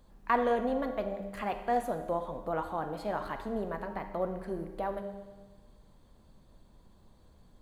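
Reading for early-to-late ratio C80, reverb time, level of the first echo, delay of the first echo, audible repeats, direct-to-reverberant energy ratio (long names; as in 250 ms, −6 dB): 10.0 dB, 1.3 s, no echo audible, no echo audible, no echo audible, 6.5 dB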